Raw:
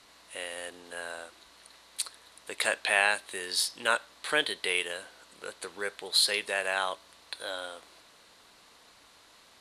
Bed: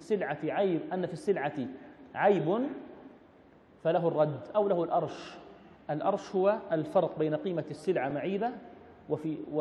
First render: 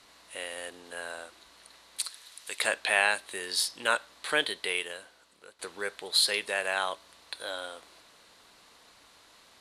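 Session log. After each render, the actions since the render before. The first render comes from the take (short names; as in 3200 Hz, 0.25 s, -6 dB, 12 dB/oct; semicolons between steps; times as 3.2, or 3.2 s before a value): 2.04–2.6 tilt shelf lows -7.5 dB, about 1500 Hz; 4.45–5.59 fade out, to -14.5 dB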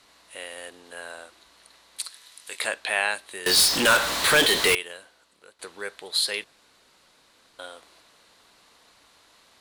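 2.1–2.65 doubler 23 ms -8 dB; 3.46–4.75 power-law curve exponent 0.35; 6.44–7.59 room tone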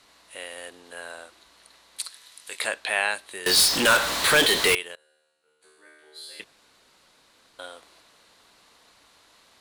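4.95–6.4 resonator 76 Hz, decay 1.5 s, mix 100%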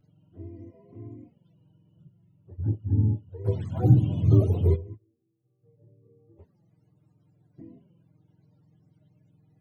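spectrum mirrored in octaves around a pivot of 420 Hz; envelope flanger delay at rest 7 ms, full sweep at -21.5 dBFS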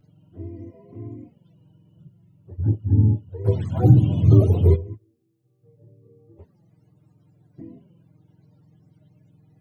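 gain +6 dB; limiter -3 dBFS, peak gain reduction 3 dB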